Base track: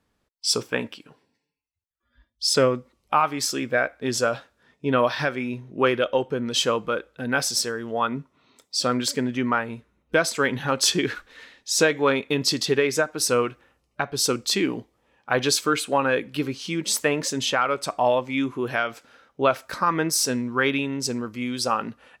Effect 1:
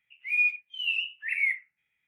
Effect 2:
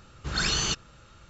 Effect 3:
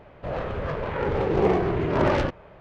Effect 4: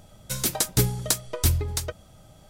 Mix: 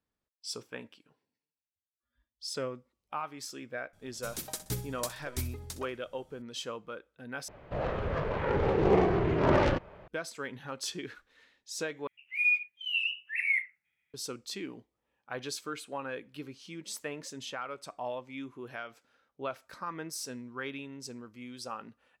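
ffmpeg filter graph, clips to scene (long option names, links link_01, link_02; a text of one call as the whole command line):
ffmpeg -i bed.wav -i cue0.wav -i cue1.wav -i cue2.wav -i cue3.wav -filter_complex "[0:a]volume=-16.5dB[link_01];[4:a]aecho=1:1:63|126|189|252:0.2|0.0738|0.0273|0.0101[link_02];[link_01]asplit=3[link_03][link_04][link_05];[link_03]atrim=end=7.484[link_06];[3:a]atrim=end=2.6,asetpts=PTS-STARTPTS,volume=-3dB[link_07];[link_04]atrim=start=10.076:end=12.074[link_08];[1:a]atrim=end=2.07,asetpts=PTS-STARTPTS,volume=-2dB[link_09];[link_05]atrim=start=14.136[link_10];[link_02]atrim=end=2.49,asetpts=PTS-STARTPTS,volume=-14dB,afade=type=in:duration=0.004:curve=hsin,afade=type=out:start_time=2.486:duration=0.004:curve=hsin,adelay=173313S[link_11];[link_06][link_07]acrossfade=duration=0.004:curve1=hsin:curve2=hsin[link_12];[link_12][link_08]acrossfade=duration=0.004:curve1=hsin:curve2=hsin[link_13];[link_13][link_09]acrossfade=duration=0.004:curve1=hsin:curve2=hsin[link_14];[link_14][link_10]acrossfade=duration=0.004:curve1=hsin:curve2=hsin[link_15];[link_15][link_11]amix=inputs=2:normalize=0" out.wav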